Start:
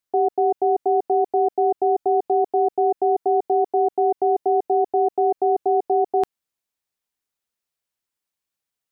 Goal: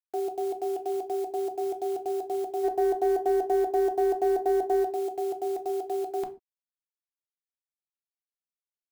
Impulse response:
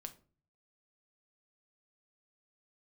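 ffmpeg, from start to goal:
-filter_complex "[0:a]asplit=3[link_01][link_02][link_03];[link_01]afade=type=out:start_time=2.63:duration=0.02[link_04];[link_02]acontrast=64,afade=type=in:start_time=2.63:duration=0.02,afade=type=out:start_time=4.83:duration=0.02[link_05];[link_03]afade=type=in:start_time=4.83:duration=0.02[link_06];[link_04][link_05][link_06]amix=inputs=3:normalize=0,acrusher=bits=5:mix=0:aa=0.000001[link_07];[1:a]atrim=start_sample=2205,afade=type=out:start_time=0.2:duration=0.01,atrim=end_sample=9261[link_08];[link_07][link_08]afir=irnorm=-1:irlink=0,volume=-5dB"

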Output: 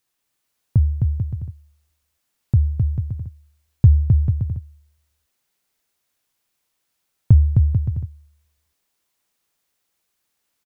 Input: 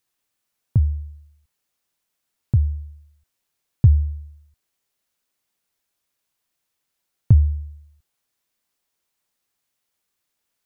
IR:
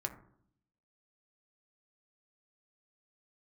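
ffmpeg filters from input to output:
-af "aecho=1:1:260|442|569.4|658.6|721:0.631|0.398|0.251|0.158|0.1,volume=1.5dB"

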